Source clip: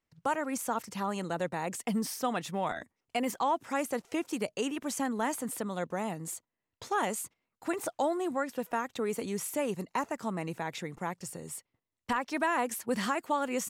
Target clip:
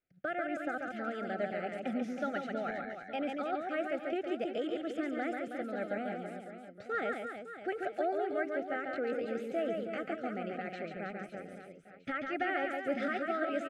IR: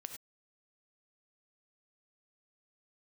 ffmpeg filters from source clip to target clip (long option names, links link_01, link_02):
-filter_complex "[0:a]lowpass=1600,lowshelf=frequency=320:gain=-8,asetrate=49501,aresample=44100,atempo=0.890899,asuperstop=centerf=1000:order=8:qfactor=2,asplit=2[link_01][link_02];[link_02]aecho=0:1:140|322|558.6|866.2|1266:0.631|0.398|0.251|0.158|0.1[link_03];[link_01][link_03]amix=inputs=2:normalize=0"